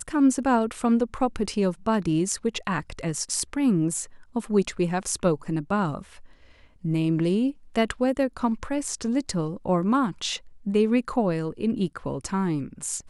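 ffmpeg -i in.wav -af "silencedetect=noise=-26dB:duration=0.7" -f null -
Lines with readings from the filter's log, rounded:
silence_start: 5.99
silence_end: 6.85 | silence_duration: 0.86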